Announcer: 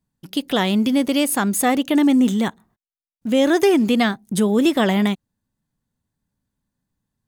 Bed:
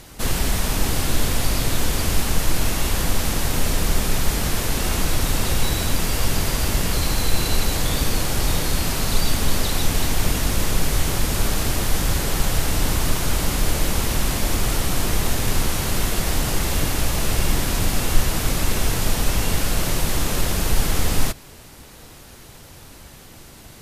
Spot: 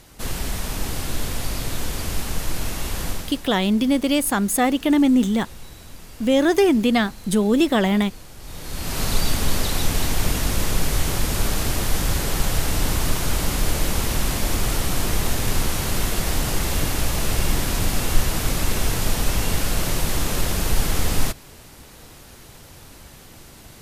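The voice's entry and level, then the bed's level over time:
2.95 s, -1.0 dB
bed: 3.10 s -5.5 dB
3.50 s -20 dB
8.38 s -20 dB
9.01 s -1 dB

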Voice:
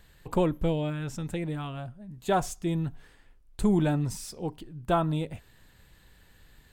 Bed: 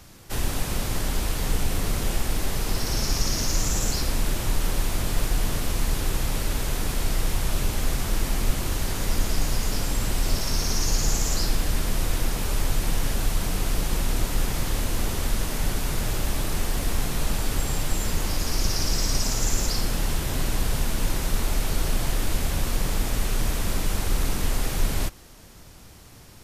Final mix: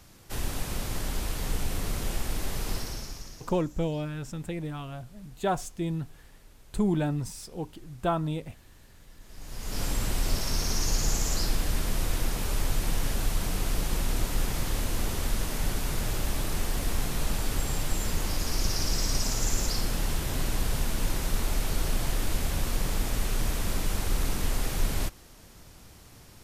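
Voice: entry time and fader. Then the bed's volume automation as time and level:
3.15 s, -2.0 dB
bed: 2.74 s -5.5 dB
3.63 s -29 dB
9.19 s -29 dB
9.82 s -3.5 dB

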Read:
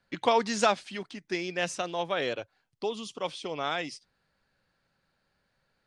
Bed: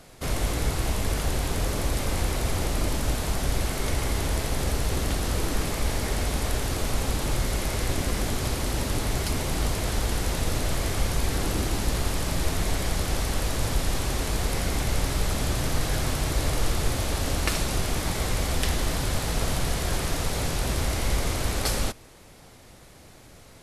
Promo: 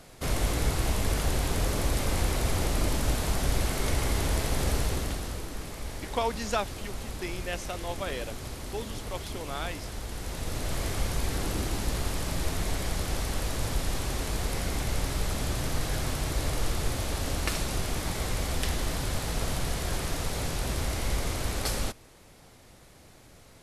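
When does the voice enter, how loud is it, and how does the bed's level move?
5.90 s, -5.0 dB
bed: 4.79 s -1 dB
5.47 s -11 dB
10.08 s -11 dB
10.80 s -4 dB

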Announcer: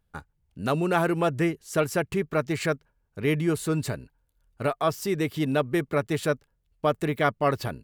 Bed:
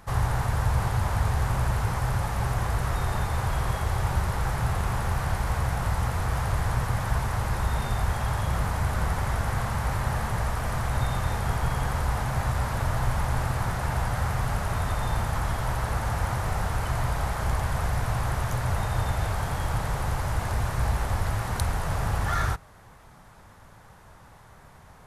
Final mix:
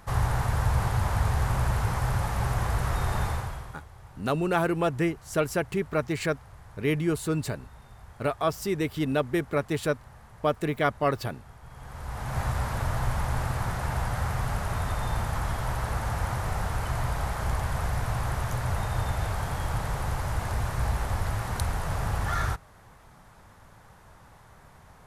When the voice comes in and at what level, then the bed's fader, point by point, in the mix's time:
3.60 s, -1.5 dB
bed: 3.29 s -0.5 dB
3.88 s -22.5 dB
11.61 s -22.5 dB
12.39 s -2 dB

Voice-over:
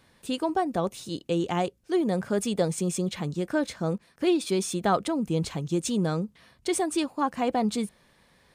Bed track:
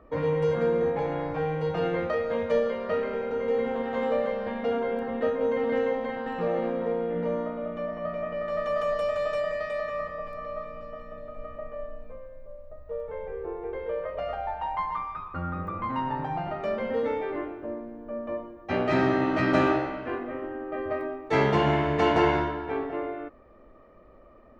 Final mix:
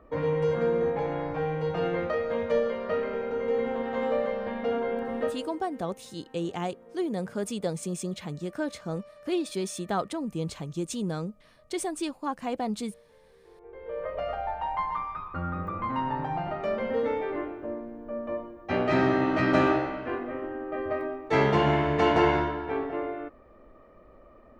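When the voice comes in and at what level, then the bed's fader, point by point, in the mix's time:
5.05 s, -5.0 dB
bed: 5.23 s -1 dB
5.61 s -23.5 dB
13.41 s -23.5 dB
14.06 s 0 dB

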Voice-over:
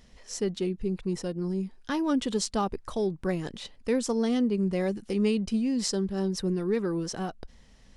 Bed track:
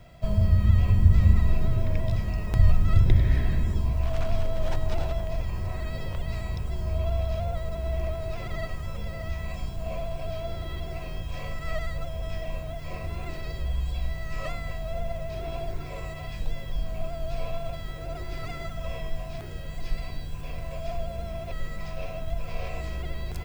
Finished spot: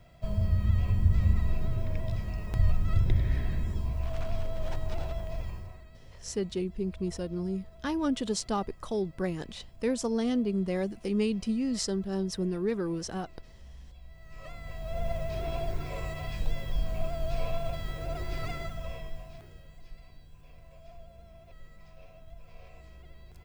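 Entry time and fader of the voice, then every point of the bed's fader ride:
5.95 s, -2.5 dB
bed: 5.48 s -6 dB
5.88 s -20.5 dB
14.04 s -20.5 dB
15.08 s 0 dB
18.48 s 0 dB
19.90 s -18 dB

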